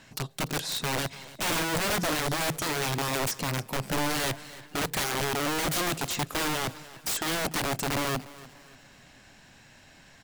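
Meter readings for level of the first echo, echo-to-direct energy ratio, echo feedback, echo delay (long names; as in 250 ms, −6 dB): −18.5 dB, −18.0 dB, 37%, 293 ms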